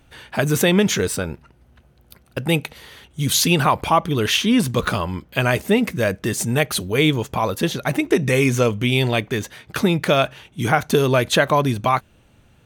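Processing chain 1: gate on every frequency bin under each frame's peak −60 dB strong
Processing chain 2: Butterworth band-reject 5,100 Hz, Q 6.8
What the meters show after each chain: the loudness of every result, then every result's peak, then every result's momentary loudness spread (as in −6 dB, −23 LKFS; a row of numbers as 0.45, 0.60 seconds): −19.5, −19.5 LKFS; −2.0, −2.0 dBFS; 10, 9 LU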